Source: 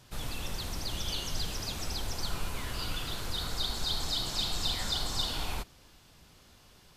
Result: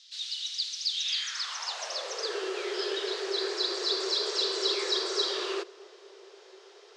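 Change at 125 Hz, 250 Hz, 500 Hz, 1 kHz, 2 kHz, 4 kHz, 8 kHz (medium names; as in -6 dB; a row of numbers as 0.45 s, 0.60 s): under -40 dB, +3.0 dB, +13.0 dB, +2.0 dB, +4.5 dB, +4.5 dB, +1.0 dB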